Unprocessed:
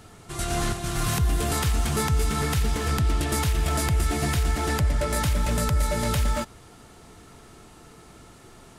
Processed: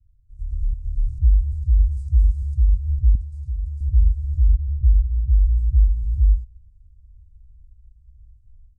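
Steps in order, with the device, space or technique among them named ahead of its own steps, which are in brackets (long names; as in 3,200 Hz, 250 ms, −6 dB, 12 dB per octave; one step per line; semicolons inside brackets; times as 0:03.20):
inverse Chebyshev band-stop filter 220–3,400 Hz, stop band 60 dB
0:01.91–0:02.55: high-shelf EQ 3,800 Hz +11 dB
0:03.15–0:03.81: high-pass filter 160 Hz 6 dB per octave
0:04.49–0:05.39: low-pass filter 3,300 Hz 24 dB per octave
action camera in a waterproof case (low-pass filter 2,900 Hz 24 dB per octave; automatic gain control gain up to 10 dB; AAC 96 kbit/s 22,050 Hz)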